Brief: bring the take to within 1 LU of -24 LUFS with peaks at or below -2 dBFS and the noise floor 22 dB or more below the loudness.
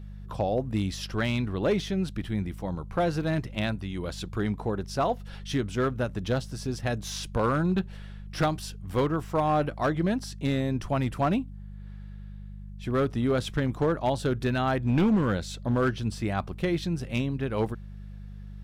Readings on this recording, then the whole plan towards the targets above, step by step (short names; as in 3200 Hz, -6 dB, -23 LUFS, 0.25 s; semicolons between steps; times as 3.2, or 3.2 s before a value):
clipped 1.0%; flat tops at -18.0 dBFS; hum 50 Hz; harmonics up to 200 Hz; hum level -38 dBFS; loudness -28.5 LUFS; peak -18.0 dBFS; loudness target -24.0 LUFS
-> clip repair -18 dBFS; de-hum 50 Hz, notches 4; gain +4.5 dB